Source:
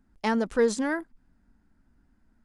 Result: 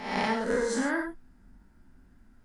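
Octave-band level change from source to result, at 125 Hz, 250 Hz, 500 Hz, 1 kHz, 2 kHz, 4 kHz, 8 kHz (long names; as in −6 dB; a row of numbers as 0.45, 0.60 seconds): can't be measured, −2.5 dB, −3.5 dB, +1.0 dB, +1.5 dB, +2.0 dB, −0.5 dB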